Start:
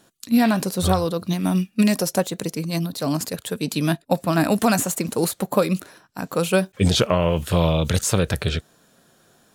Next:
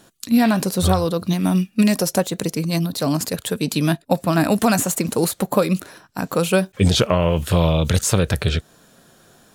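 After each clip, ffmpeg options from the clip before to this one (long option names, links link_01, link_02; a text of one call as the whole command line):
ffmpeg -i in.wav -filter_complex "[0:a]lowshelf=frequency=68:gain=6,asplit=2[link_01][link_02];[link_02]acompressor=threshold=-26dB:ratio=6,volume=0.5dB[link_03];[link_01][link_03]amix=inputs=2:normalize=0,volume=-1dB" out.wav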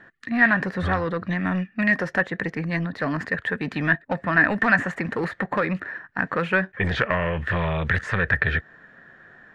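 ffmpeg -i in.wav -filter_complex "[0:a]lowpass=frequency=1800:width_type=q:width=12,acrossover=split=1000[link_01][link_02];[link_01]asoftclip=type=tanh:threshold=-17.5dB[link_03];[link_03][link_02]amix=inputs=2:normalize=0,volume=-3.5dB" out.wav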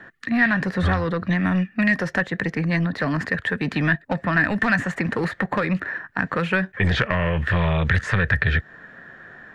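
ffmpeg -i in.wav -filter_complex "[0:a]acrossover=split=190|3000[link_01][link_02][link_03];[link_02]acompressor=threshold=-32dB:ratio=2[link_04];[link_01][link_04][link_03]amix=inputs=3:normalize=0,volume=6dB" out.wav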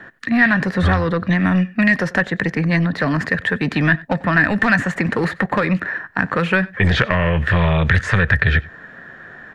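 ffmpeg -i in.wav -filter_complex "[0:a]asplit=2[link_01][link_02];[link_02]adelay=93.29,volume=-22dB,highshelf=frequency=4000:gain=-2.1[link_03];[link_01][link_03]amix=inputs=2:normalize=0,volume=4.5dB" out.wav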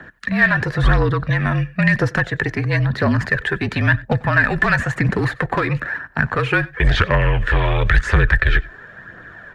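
ffmpeg -i in.wav -af "afreqshift=-40,aphaser=in_gain=1:out_gain=1:delay=3.1:decay=0.4:speed=0.98:type=triangular,volume=-1dB" out.wav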